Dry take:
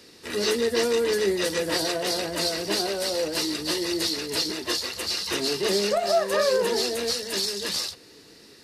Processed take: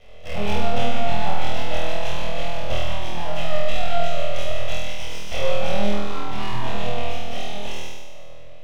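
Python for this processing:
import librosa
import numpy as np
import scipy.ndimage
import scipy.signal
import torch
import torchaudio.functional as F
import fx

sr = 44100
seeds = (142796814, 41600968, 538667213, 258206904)

p1 = fx.low_shelf(x, sr, hz=190.0, db=-5.5)
p2 = fx.rider(p1, sr, range_db=5, speed_s=0.5)
p3 = p1 + F.gain(torch.from_numpy(p2), 0.0).numpy()
p4 = fx.formant_cascade(p3, sr, vowel='i')
p5 = np.abs(p4)
p6 = p5 + fx.room_flutter(p5, sr, wall_m=4.2, rt60_s=1.3, dry=0)
y = F.gain(torch.from_numpy(p6), 7.0).numpy()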